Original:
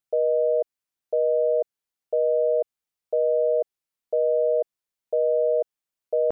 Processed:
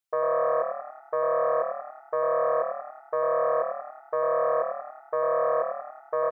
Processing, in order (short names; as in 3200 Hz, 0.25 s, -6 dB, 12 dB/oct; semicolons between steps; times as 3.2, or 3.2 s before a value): self-modulated delay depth 0.22 ms; low shelf 410 Hz -9.5 dB; frequency-shifting echo 94 ms, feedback 55%, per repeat +38 Hz, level -6 dB